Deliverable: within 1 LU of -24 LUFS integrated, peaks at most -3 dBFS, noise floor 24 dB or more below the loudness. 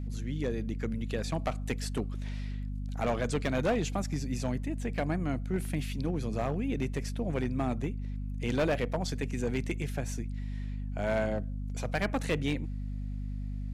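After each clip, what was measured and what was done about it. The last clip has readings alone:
clipped 1.2%; flat tops at -23.0 dBFS; hum 50 Hz; harmonics up to 250 Hz; hum level -33 dBFS; loudness -33.5 LUFS; peak -23.0 dBFS; loudness target -24.0 LUFS
-> clip repair -23 dBFS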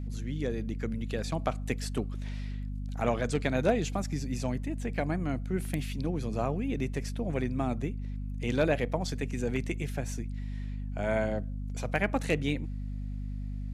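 clipped 0.0%; hum 50 Hz; harmonics up to 250 Hz; hum level -33 dBFS
-> notches 50/100/150/200/250 Hz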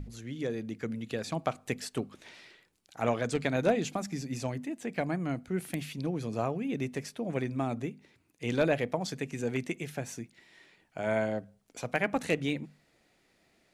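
hum none; loudness -33.5 LUFS; peak -13.5 dBFS; loudness target -24.0 LUFS
-> gain +9.5 dB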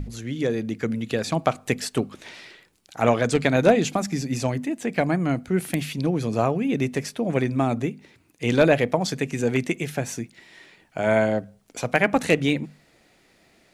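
loudness -24.0 LUFS; peak -4.0 dBFS; noise floor -60 dBFS

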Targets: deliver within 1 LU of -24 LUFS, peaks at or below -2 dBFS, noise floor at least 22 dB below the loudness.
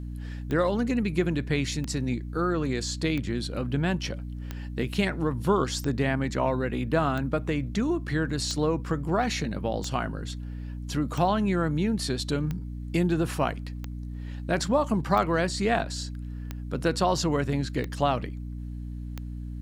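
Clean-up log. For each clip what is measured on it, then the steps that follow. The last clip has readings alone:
clicks 15; hum 60 Hz; harmonics up to 300 Hz; hum level -33 dBFS; loudness -28.0 LUFS; peak -9.0 dBFS; loudness target -24.0 LUFS
-> de-click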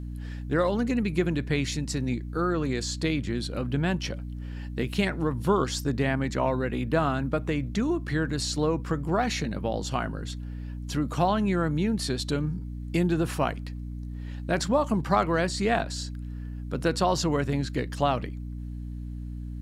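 clicks 0; hum 60 Hz; harmonics up to 300 Hz; hum level -33 dBFS
-> notches 60/120/180/240/300 Hz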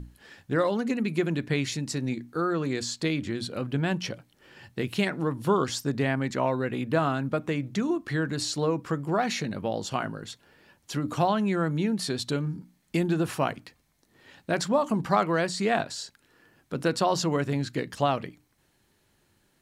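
hum none; loudness -28.0 LUFS; peak -9.0 dBFS; loudness target -24.0 LUFS
-> gain +4 dB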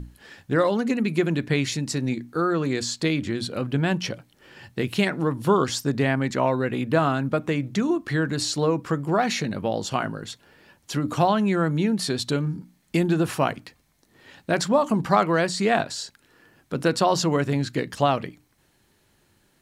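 loudness -24.0 LUFS; peak -5.0 dBFS; noise floor -64 dBFS

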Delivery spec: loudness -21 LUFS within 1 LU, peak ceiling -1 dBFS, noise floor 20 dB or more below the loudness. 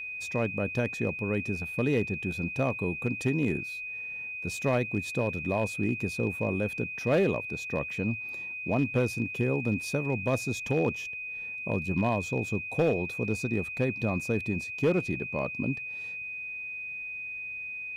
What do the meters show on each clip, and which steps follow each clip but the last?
clipped 0.3%; flat tops at -18.5 dBFS; steady tone 2500 Hz; tone level -35 dBFS; loudness -30.0 LUFS; peak -18.5 dBFS; loudness target -21.0 LUFS
-> clip repair -18.5 dBFS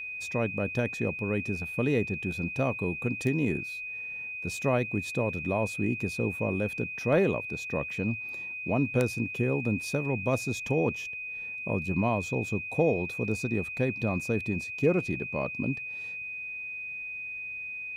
clipped 0.0%; steady tone 2500 Hz; tone level -35 dBFS
-> notch 2500 Hz, Q 30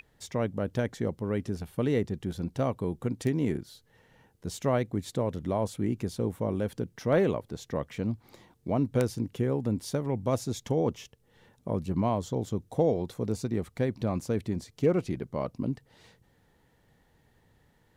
steady tone none; loudness -31.0 LUFS; peak -9.5 dBFS; loudness target -21.0 LUFS
-> gain +10 dB; limiter -1 dBFS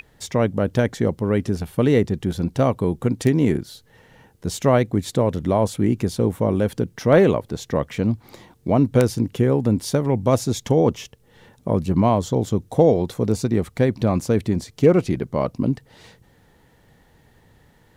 loudness -21.0 LUFS; peak -1.0 dBFS; noise floor -57 dBFS

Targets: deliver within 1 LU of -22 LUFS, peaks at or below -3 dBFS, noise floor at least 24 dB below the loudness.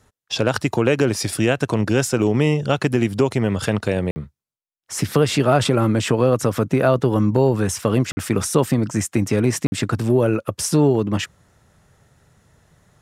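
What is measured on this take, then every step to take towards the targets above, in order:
dropouts 3; longest dropout 50 ms; loudness -19.5 LUFS; peak -2.5 dBFS; loudness target -22.0 LUFS
-> interpolate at 4.11/8.12/9.67, 50 ms; gain -2.5 dB

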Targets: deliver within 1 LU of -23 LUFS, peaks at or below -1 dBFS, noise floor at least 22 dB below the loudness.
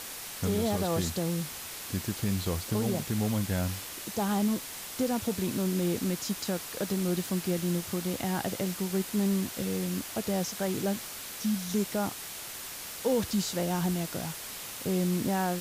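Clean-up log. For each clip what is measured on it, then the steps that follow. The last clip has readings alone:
noise floor -41 dBFS; noise floor target -53 dBFS; loudness -31.0 LUFS; peak -17.5 dBFS; loudness target -23.0 LUFS
-> denoiser 12 dB, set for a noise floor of -41 dBFS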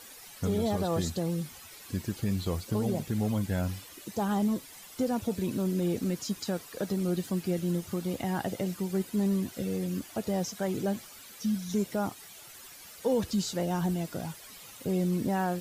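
noise floor -49 dBFS; noise floor target -54 dBFS
-> denoiser 6 dB, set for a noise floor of -49 dBFS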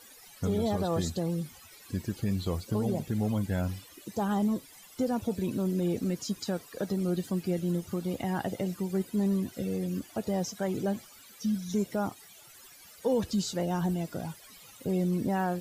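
noise floor -53 dBFS; noise floor target -54 dBFS
-> denoiser 6 dB, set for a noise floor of -53 dBFS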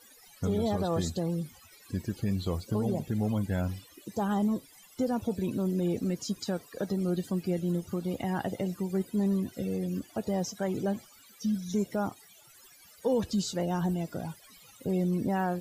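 noise floor -57 dBFS; loudness -31.5 LUFS; peak -18.5 dBFS; loudness target -23.0 LUFS
-> gain +8.5 dB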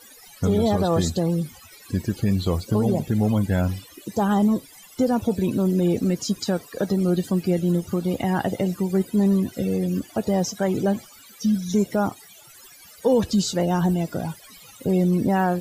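loudness -23.0 LUFS; peak -10.0 dBFS; noise floor -48 dBFS

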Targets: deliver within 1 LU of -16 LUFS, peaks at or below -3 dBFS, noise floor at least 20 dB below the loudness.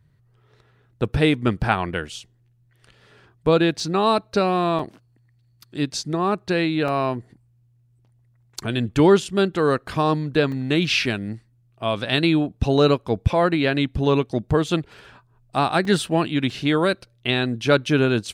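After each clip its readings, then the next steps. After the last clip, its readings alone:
dropouts 6; longest dropout 2.7 ms; loudness -21.5 LUFS; peak -3.5 dBFS; loudness target -16.0 LUFS
-> interpolate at 3.8/4.79/6.88/10.52/15.85/16.5, 2.7 ms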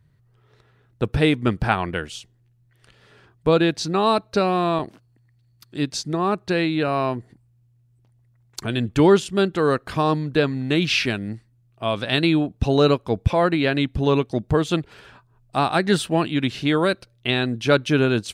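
dropouts 0; loudness -21.5 LUFS; peak -3.5 dBFS; loudness target -16.0 LUFS
-> gain +5.5 dB; limiter -3 dBFS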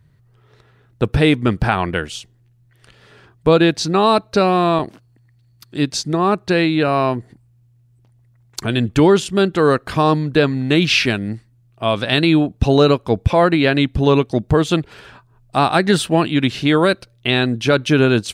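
loudness -16.5 LUFS; peak -3.0 dBFS; noise floor -55 dBFS

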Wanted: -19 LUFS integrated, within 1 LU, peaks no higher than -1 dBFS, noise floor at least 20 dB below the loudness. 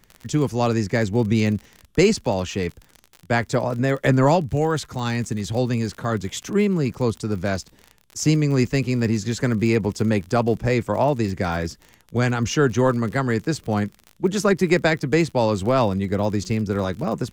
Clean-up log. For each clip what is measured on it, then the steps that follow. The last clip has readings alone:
ticks 44/s; loudness -22.0 LUFS; peak -5.5 dBFS; loudness target -19.0 LUFS
-> de-click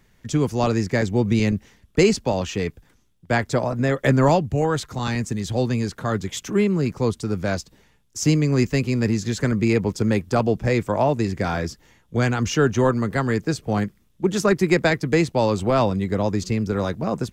ticks 0.12/s; loudness -22.0 LUFS; peak -5.5 dBFS; loudness target -19.0 LUFS
-> gain +3 dB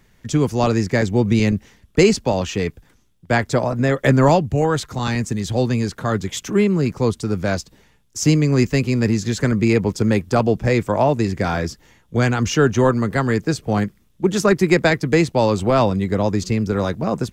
loudness -19.0 LUFS; peak -2.5 dBFS; noise floor -57 dBFS

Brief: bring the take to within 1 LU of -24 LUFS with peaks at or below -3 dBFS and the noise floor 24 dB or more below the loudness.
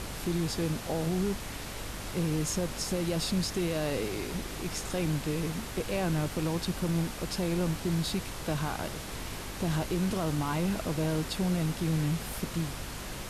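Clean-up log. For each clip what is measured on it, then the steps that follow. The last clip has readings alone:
hum 50 Hz; harmonics up to 250 Hz; hum level -44 dBFS; noise floor -40 dBFS; noise floor target -56 dBFS; loudness -32.0 LUFS; peak -19.5 dBFS; loudness target -24.0 LUFS
-> de-hum 50 Hz, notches 5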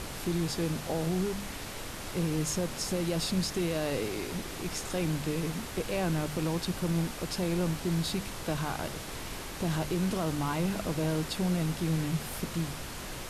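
hum none; noise floor -40 dBFS; noise floor target -56 dBFS
-> noise print and reduce 16 dB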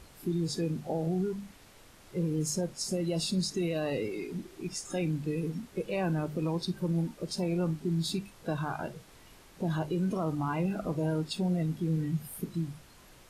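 noise floor -56 dBFS; noise floor target -57 dBFS
-> noise print and reduce 6 dB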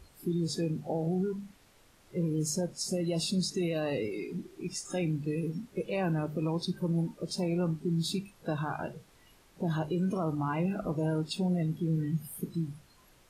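noise floor -62 dBFS; loudness -33.0 LUFS; peak -20.5 dBFS; loudness target -24.0 LUFS
-> gain +9 dB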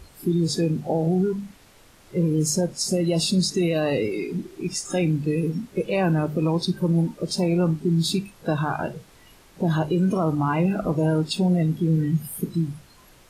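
loudness -24.0 LUFS; peak -11.5 dBFS; noise floor -53 dBFS

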